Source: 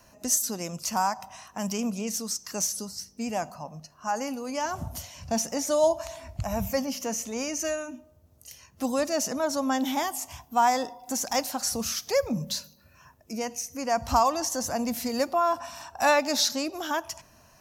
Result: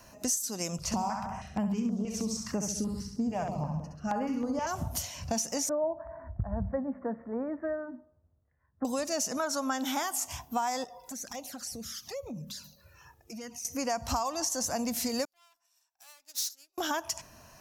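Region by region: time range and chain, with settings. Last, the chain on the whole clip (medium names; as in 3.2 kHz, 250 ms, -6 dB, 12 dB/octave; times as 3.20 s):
0.78–4.67 s: RIAA curve playback + flutter echo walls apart 11.5 m, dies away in 0.69 s + step-sequenced notch 6.3 Hz 270–6000 Hz
5.69–8.85 s: steep low-pass 1.8 kHz 72 dB/octave + dynamic bell 1.3 kHz, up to -7 dB, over -40 dBFS, Q 0.71 + three bands expanded up and down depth 70%
9.37–10.26 s: high-pass 160 Hz 6 dB/octave + peaking EQ 1.4 kHz +10 dB 0.45 oct
10.84–13.65 s: touch-sensitive flanger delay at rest 2.6 ms, full sweep at -23.5 dBFS + compression 3:1, threshold -44 dBFS
15.25–16.78 s: valve stage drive 30 dB, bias 0.55 + pre-emphasis filter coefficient 0.97 + upward expansion 2.5:1, over -51 dBFS
whole clip: dynamic bell 7.4 kHz, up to +6 dB, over -44 dBFS, Q 0.76; compression 6:1, threshold -31 dBFS; trim +2.5 dB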